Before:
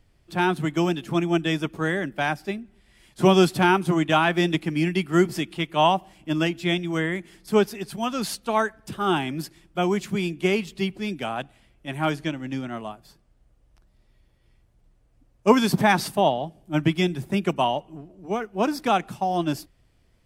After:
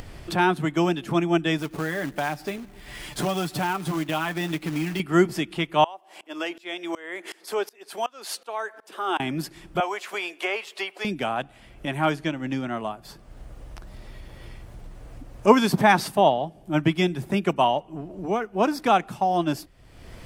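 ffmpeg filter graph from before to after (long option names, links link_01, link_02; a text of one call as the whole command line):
ffmpeg -i in.wav -filter_complex "[0:a]asettb=1/sr,asplit=3[link_01][link_02][link_03];[link_01]atrim=end=1.584[link_04];[link_02]atrim=start=1.58:end=5,asetpts=PTS-STARTPTS,afade=type=in:duration=0.004:curve=qsin,afade=type=out:start_time=3.416:duration=0.004:curve=qsin,aecho=1:1:6.8:0.51,atrim=end_sample=150822,acompressor=threshold=-31dB:ratio=2:attack=3.2:release=140:knee=1:detection=peak,acrusher=bits=3:mode=log:mix=0:aa=0.000001[link_05];[link_03]atrim=start=4.996[link_06];[link_04][link_05]acrossfade=duration=0.004:curve1=hsin:curve2=qsin[link_07];[link_07][link_06]acrossfade=duration=0.004:curve1=qsin:curve2=hsin,asettb=1/sr,asplit=3[link_08][link_09][link_10];[link_08]atrim=end=5.844[link_11];[link_09]atrim=start=5.84:end=9.2,asetpts=PTS-STARTPTS,afade=type=in:duration=0.004:curve=qsin,afade=type=out:start_time=3.356:duration=0.004:curve=qsin,highpass=frequency=380:width=0.5412,highpass=frequency=380:width=1.3066,acompressor=mode=upward:threshold=-39dB:ratio=2.5:attack=3.2:release=140:knee=2.83:detection=peak,aeval=exprs='val(0)*pow(10,-26*if(lt(mod(-2.7*n/s,1),2*abs(-2.7)/1000),1-mod(-2.7*n/s,1)/(2*abs(-2.7)/1000),(mod(-2.7*n/s,1)-2*abs(-2.7)/1000)/(1-2*abs(-2.7)/1000))/20)':channel_layout=same[link_12];[link_10]atrim=start=9.196[link_13];[link_11][link_12]acrossfade=duration=0.004:curve1=hsin:curve2=qsin[link_14];[link_14][link_13]acrossfade=duration=0.004:curve1=qsin:curve2=hsin,asettb=1/sr,asplit=3[link_15][link_16][link_17];[link_15]atrim=end=9.804[link_18];[link_16]atrim=start=9.8:end=11.05,asetpts=PTS-STARTPTS,afade=type=in:duration=0.004:curve=qsin,afade=type=out:start_time=1.246:duration=0.004:curve=qsin,highpass=frequency=540:width=0.5412,highpass=frequency=540:width=1.3066,acrossover=split=3000[link_19][link_20];[link_20]acompressor=threshold=-44dB:ratio=4:attack=1:release=60[link_21];[link_19][link_21]amix=inputs=2:normalize=0[link_22];[link_17]atrim=start=11.046[link_23];[link_18][link_22]acrossfade=duration=0.004:curve1=hsin:curve2=qsin[link_24];[link_24][link_23]acrossfade=duration=0.004:curve1=qsin:curve2=hsin,equalizer=frequency=910:width_type=o:width=2.9:gain=4,acompressor=mode=upward:threshold=-21dB:ratio=2.5,volume=-1.5dB" out.wav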